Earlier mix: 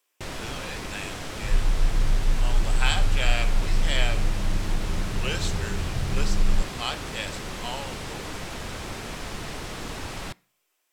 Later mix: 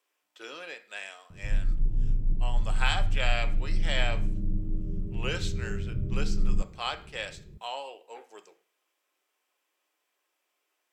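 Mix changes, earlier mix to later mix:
speech: add high shelf 4200 Hz -9.5 dB; first sound: muted; master: add low shelf 150 Hz -4 dB

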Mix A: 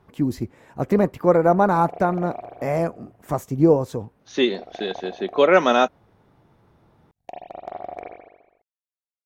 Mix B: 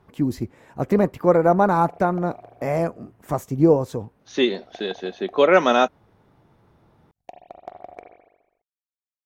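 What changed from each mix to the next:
background: send -9.5 dB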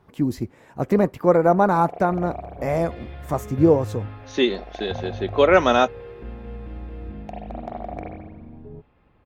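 first sound: send +9.5 dB; second sound: unmuted

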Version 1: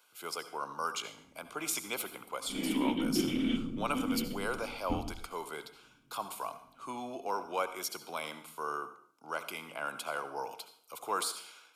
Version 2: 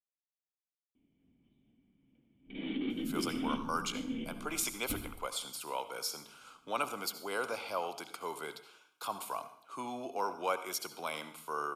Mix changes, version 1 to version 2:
speech: entry +2.90 s; background -5.0 dB

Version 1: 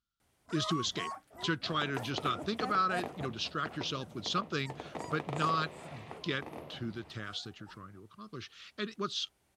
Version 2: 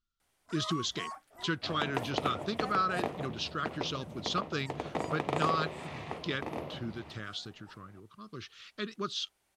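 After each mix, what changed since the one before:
first sound: add low shelf 390 Hz -11 dB; second sound +7.0 dB; master: remove HPF 49 Hz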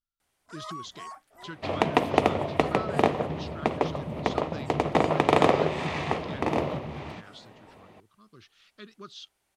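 speech -9.0 dB; second sound +12.0 dB

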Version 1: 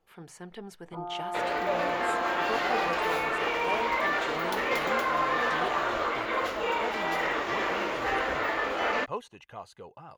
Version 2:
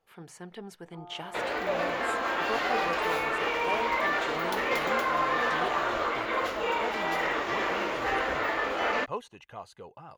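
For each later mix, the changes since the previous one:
first sound -10.5 dB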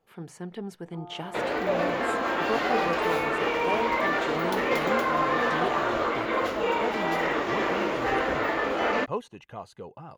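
master: add bell 200 Hz +8 dB 2.9 oct

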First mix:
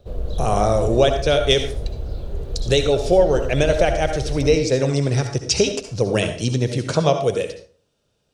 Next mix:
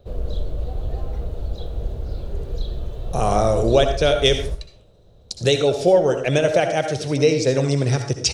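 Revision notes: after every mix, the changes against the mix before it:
speech: entry +2.75 s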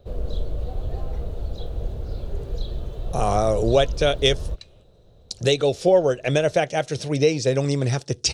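reverb: off

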